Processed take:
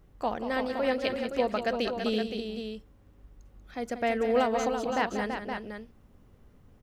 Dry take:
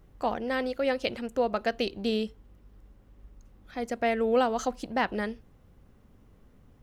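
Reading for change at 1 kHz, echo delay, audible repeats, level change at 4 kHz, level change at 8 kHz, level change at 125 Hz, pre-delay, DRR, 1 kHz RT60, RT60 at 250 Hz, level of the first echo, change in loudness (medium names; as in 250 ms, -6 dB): 0.0 dB, 187 ms, 3, 0.0 dB, 0.0 dB, 0.0 dB, no reverb, no reverb, no reverb, no reverb, -10.0 dB, -0.5 dB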